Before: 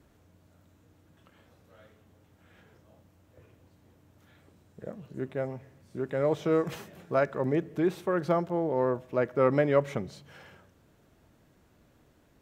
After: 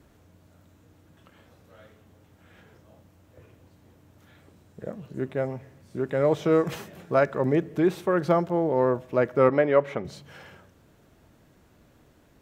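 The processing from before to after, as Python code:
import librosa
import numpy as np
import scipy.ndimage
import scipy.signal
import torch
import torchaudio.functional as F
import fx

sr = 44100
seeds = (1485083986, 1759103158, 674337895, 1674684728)

y = fx.bass_treble(x, sr, bass_db=-9, treble_db=-13, at=(9.49, 10.05))
y = F.gain(torch.from_numpy(y), 4.5).numpy()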